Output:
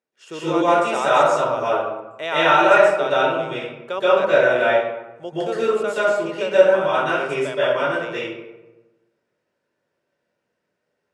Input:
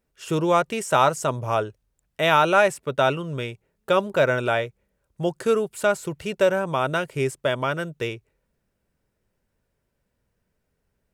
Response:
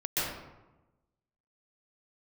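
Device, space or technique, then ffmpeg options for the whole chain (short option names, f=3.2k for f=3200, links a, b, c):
supermarket ceiling speaker: -filter_complex "[0:a]highpass=320,lowpass=6.7k[a];[1:a]atrim=start_sample=2205[b];[a][b]afir=irnorm=-1:irlink=0,volume=-4.5dB"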